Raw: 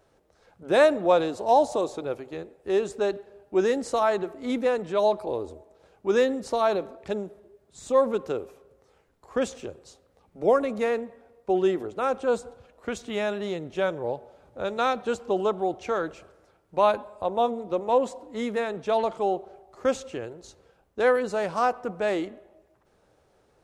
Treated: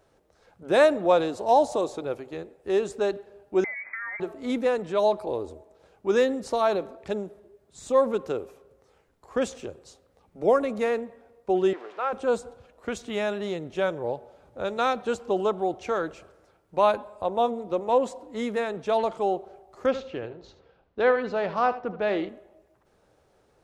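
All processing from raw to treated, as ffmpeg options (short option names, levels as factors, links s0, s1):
-filter_complex "[0:a]asettb=1/sr,asplit=3[s0][s1][s2];[s0]atrim=end=3.644[s3];[s1]atrim=start=3.64:end=4.2,asetpts=PTS-STARTPTS,afade=t=in:d=0.004:c=qsin,afade=t=out:st=0.556:d=0.004:c=qsin,acompressor=threshold=0.0251:ratio=6:attack=3.2:release=140:knee=1:detection=peak,lowpass=f=2100:t=q:w=0.5098,lowpass=f=2100:t=q:w=0.6013,lowpass=f=2100:t=q:w=0.9,lowpass=f=2100:t=q:w=2.563,afreqshift=-2500[s4];[s2]atrim=start=4.196[s5];[s3][s4]acrossfade=d=0.004:c1=hsin:c2=qsin[s6];[s6][s5]acrossfade=d=0.004:c1=qsin:c2=hsin,asettb=1/sr,asplit=3[s7][s8][s9];[s7]atrim=end=11.734[s10];[s8]atrim=start=11.73:end=12.13,asetpts=PTS-STARTPTS,afade=t=in:d=0.004:c=qsin,afade=t=out:st=0.396:d=0.004:c=qsin,aeval=exprs='val(0)+0.5*0.0126*sgn(val(0))':c=same,highpass=700,lowpass=2600[s11];[s9]atrim=start=12.126[s12];[s10][s11]acrossfade=d=0.004:c1=hsin:c2=qsin[s13];[s13][s12]acrossfade=d=0.004:c1=qsin:c2=hsin,asettb=1/sr,asplit=3[s14][s15][s16];[s14]atrim=end=19.864[s17];[s15]atrim=start=19.86:end=22.29,asetpts=PTS-STARTPTS,afade=t=in:d=0.004:c=qsin,afade=t=out:st=2.426:d=0.004:c=qsin,lowpass=f=4400:w=0.5412,lowpass=f=4400:w=1.3066,aecho=1:1:77:0.224,atrim=end_sample=107163[s18];[s16]atrim=start=22.286[s19];[s17][s18]acrossfade=d=0.004:c1=hsin:c2=qsin[s20];[s20][s19]acrossfade=d=0.004:c1=qsin:c2=hsin"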